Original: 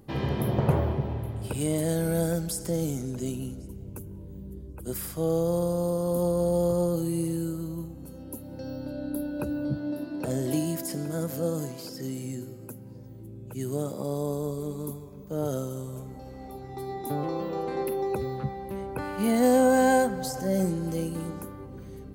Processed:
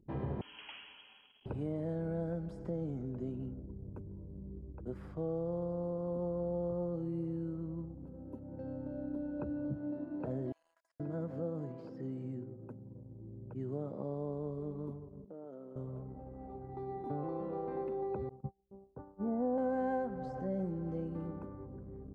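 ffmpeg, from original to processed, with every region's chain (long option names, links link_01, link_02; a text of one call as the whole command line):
ffmpeg -i in.wav -filter_complex "[0:a]asettb=1/sr,asplit=3[link_01][link_02][link_03];[link_01]atrim=end=0.414[link_04];[link_02]atrim=start=0.41:end=1.46,asetpts=PTS-STARTPTS,afade=type=in:duration=0.004:curve=qsin,afade=type=out:start_time=1.046:duration=0.004:curve=qsin,highpass=frequency=520:poles=1,lowpass=frequency=2900:width_type=q:width=0.5098,lowpass=frequency=2900:width_type=q:width=0.6013,lowpass=frequency=2900:width_type=q:width=0.9,lowpass=frequency=2900:width_type=q:width=2.563,afreqshift=-3400[link_05];[link_03]atrim=start=1.456[link_06];[link_04][link_05]acrossfade=duration=0.004:curve1=hsin:curve2=qsin[link_07];[link_07][link_06]acrossfade=duration=0.004:curve1=qsin:curve2=hsin,asettb=1/sr,asplit=3[link_08][link_09][link_10];[link_08]atrim=end=10.524[link_11];[link_09]atrim=start=10.52:end=11,asetpts=PTS-STARTPTS,afade=type=in:duration=0.004:curve=qsin,afade=type=out:start_time=0.476:duration=0.004:curve=qsin,highpass=frequency=1300:width=0.5412,highpass=frequency=1300:width=1.3066,equalizer=frequency=2600:width=0.67:gain=-10.5,acompressor=threshold=-41dB:ratio=12:attack=3.2:release=140:knee=1:detection=peak[link_12];[link_10]atrim=start=10.996[link_13];[link_11][link_12]acrossfade=duration=0.004:curve1=hsin:curve2=qsin[link_14];[link_14][link_13]acrossfade=duration=0.004:curve1=qsin:curve2=hsin,asettb=1/sr,asplit=3[link_15][link_16][link_17];[link_15]atrim=end=15.254[link_18];[link_16]atrim=start=15.25:end=15.76,asetpts=PTS-STARTPTS,afade=type=in:duration=0.004:curve=qsin,afade=type=out:start_time=0.506:duration=0.004:curve=qsin,highpass=frequency=200:width=0.5412,highpass=frequency=200:width=1.3066,acompressor=threshold=-41dB:ratio=4:attack=3.2:release=140:knee=1:detection=peak[link_19];[link_17]atrim=start=15.756[link_20];[link_18][link_19]acrossfade=duration=0.004:curve1=hsin:curve2=qsin[link_21];[link_21][link_20]acrossfade=duration=0.004:curve1=qsin:curve2=hsin,asettb=1/sr,asplit=3[link_22][link_23][link_24];[link_22]atrim=end=18.294[link_25];[link_23]atrim=start=18.29:end=19.58,asetpts=PTS-STARTPTS,afade=type=in:duration=0.004:curve=qsin,afade=type=out:start_time=1.286:duration=0.004:curve=qsin,agate=range=-33dB:threshold=-25dB:ratio=3:release=100:detection=peak,lowpass=frequency=1300:width=0.5412,lowpass=frequency=1300:width=1.3066[link_26];[link_24]atrim=start=19.576[link_27];[link_25][link_26]acrossfade=duration=0.004:curve1=hsin:curve2=qsin[link_28];[link_28][link_27]acrossfade=duration=0.004:curve1=qsin:curve2=hsin,anlmdn=0.0251,lowpass=1200,acompressor=threshold=-31dB:ratio=2,volume=-5.5dB" out.wav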